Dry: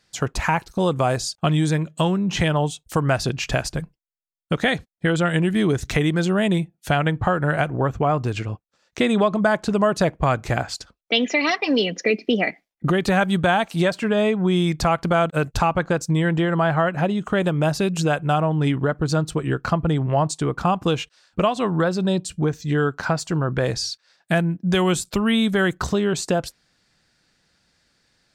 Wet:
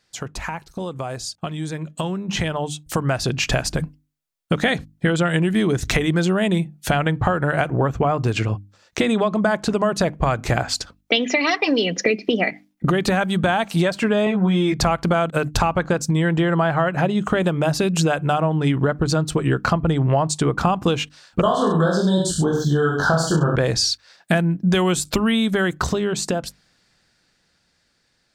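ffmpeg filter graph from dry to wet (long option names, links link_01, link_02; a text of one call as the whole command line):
ffmpeg -i in.wav -filter_complex "[0:a]asettb=1/sr,asplit=3[link_01][link_02][link_03];[link_01]atrim=end=14.254[link_04];[link_02]atrim=start=14.25:end=14.81,asetpts=PTS-STARTPTS,afade=type=in:duration=0.004:curve=qsin,afade=type=out:start_time=0.556:duration=0.004:curve=qsin,lowpass=frequency=2700:poles=1,asplit=2[link_05][link_06];[link_06]adelay=15,volume=-2.5dB[link_07];[link_05][link_07]amix=inputs=2:normalize=0,atrim=end_sample=24696[link_08];[link_03]atrim=start=14.806[link_09];[link_04][link_08]acrossfade=duration=0.004:curve1=hsin:curve2=qsin[link_10];[link_10][link_09]acrossfade=duration=0.004:curve1=qsin:curve2=hsin,asettb=1/sr,asplit=3[link_11][link_12][link_13];[link_11]atrim=end=21.414[link_14];[link_12]atrim=start=21.41:end=23.56,asetpts=PTS-STARTPTS,afade=type=in:duration=0.004:curve=qsin,afade=type=out:start_time=2.146:duration=0.004:curve=qsin,asuperstop=centerf=2300:order=20:qfactor=1.9,aecho=1:1:20|43|69.45|99.87|134.8:0.794|0.631|0.501|0.398|0.316,atrim=end_sample=94815[link_15];[link_13]atrim=start=23.556[link_16];[link_14][link_15]acrossfade=duration=0.004:curve1=hsin:curve2=qsin[link_17];[link_17][link_16]acrossfade=duration=0.004:curve1=qsin:curve2=hsin,acompressor=threshold=-24dB:ratio=6,bandreject=frequency=50:width_type=h:width=6,bandreject=frequency=100:width_type=h:width=6,bandreject=frequency=150:width_type=h:width=6,bandreject=frequency=200:width_type=h:width=6,bandreject=frequency=250:width_type=h:width=6,bandreject=frequency=300:width_type=h:width=6,dynaudnorm=framelen=390:gausssize=13:maxgain=11.5dB,volume=-1.5dB" out.wav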